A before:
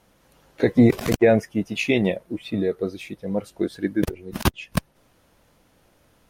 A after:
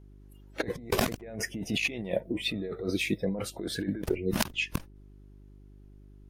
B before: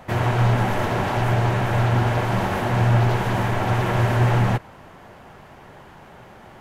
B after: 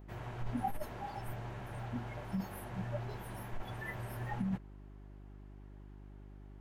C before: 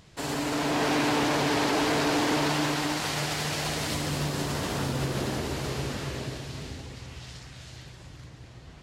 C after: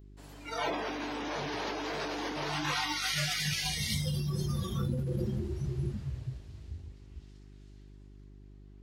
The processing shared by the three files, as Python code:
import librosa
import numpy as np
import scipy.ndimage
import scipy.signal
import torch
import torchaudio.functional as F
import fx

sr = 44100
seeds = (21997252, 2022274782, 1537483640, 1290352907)

y = fx.noise_reduce_blind(x, sr, reduce_db=24)
y = fx.over_compress(y, sr, threshold_db=-32.0, ratio=-1.0)
y = fx.dmg_buzz(y, sr, base_hz=50.0, harmonics=8, level_db=-51.0, tilt_db=-6, odd_only=False)
y = F.gain(torch.from_numpy(y), -1.0).numpy()